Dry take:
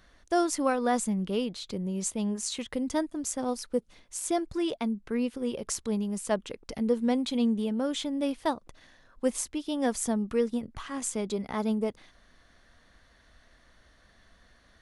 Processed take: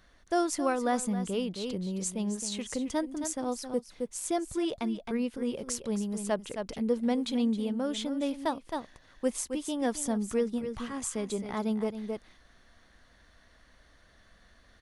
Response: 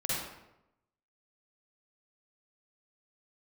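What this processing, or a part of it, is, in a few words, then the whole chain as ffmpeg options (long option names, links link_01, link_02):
ducked delay: -filter_complex "[0:a]asplit=3[link_01][link_02][link_03];[link_02]adelay=267,volume=-3dB[link_04];[link_03]apad=whole_len=665199[link_05];[link_04][link_05]sidechaincompress=threshold=-36dB:ratio=5:attack=6.7:release=256[link_06];[link_01][link_06]amix=inputs=2:normalize=0,volume=-2dB"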